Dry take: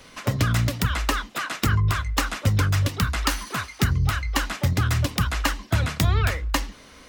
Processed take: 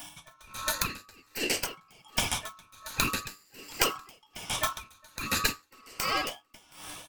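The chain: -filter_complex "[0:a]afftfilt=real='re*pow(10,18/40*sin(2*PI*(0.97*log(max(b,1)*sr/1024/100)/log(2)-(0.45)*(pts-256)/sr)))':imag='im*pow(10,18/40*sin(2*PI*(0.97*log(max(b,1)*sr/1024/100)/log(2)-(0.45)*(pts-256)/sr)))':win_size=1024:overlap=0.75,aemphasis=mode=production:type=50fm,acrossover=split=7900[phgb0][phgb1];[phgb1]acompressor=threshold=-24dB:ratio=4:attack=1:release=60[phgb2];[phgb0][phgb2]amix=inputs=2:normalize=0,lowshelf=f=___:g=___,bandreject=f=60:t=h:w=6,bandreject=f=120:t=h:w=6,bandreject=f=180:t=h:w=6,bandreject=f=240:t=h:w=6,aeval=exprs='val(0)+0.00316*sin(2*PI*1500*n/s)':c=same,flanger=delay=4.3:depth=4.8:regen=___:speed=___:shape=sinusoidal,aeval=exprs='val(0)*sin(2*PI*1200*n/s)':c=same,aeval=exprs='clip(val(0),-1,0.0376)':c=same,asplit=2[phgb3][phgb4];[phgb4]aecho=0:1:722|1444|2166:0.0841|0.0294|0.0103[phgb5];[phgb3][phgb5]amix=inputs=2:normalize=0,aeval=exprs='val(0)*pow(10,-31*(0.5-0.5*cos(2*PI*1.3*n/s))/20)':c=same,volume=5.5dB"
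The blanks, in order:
260, -11, -86, 0.94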